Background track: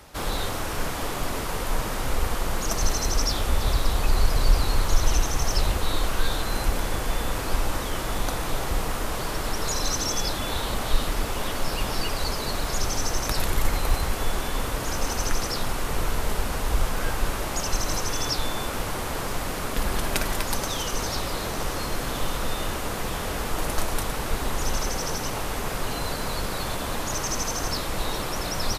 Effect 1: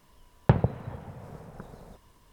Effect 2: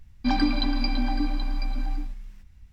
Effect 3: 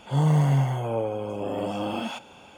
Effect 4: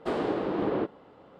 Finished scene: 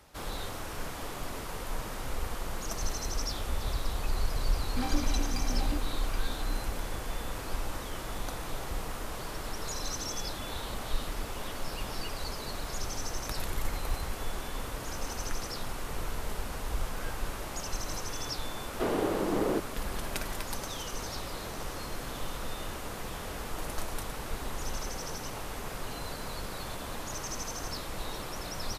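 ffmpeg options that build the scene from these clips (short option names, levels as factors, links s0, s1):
-filter_complex "[0:a]volume=0.335[s0];[2:a]asoftclip=type=tanh:threshold=0.0668,atrim=end=2.72,asetpts=PTS-STARTPTS,volume=0.562,afade=t=in:d=0.004:c=hsin,afade=t=out:st=2.716:d=0.004:c=hsin,adelay=4520[s1];[4:a]atrim=end=1.39,asetpts=PTS-STARTPTS,volume=0.891,afade=t=in:d=0.004:c=hsin,afade=t=out:st=1.386:d=0.004:c=hsin,adelay=18740[s2];[s0][s1][s2]amix=inputs=3:normalize=0"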